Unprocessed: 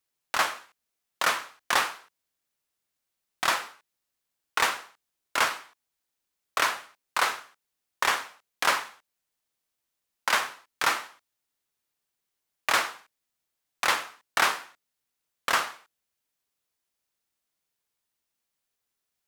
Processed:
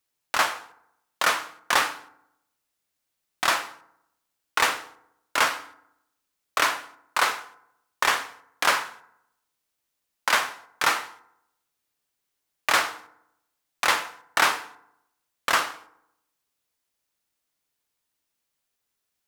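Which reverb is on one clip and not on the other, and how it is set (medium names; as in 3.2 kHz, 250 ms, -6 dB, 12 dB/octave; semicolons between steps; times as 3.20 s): FDN reverb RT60 0.8 s, low-frequency decay 1.1×, high-frequency decay 0.55×, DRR 13 dB; trim +2.5 dB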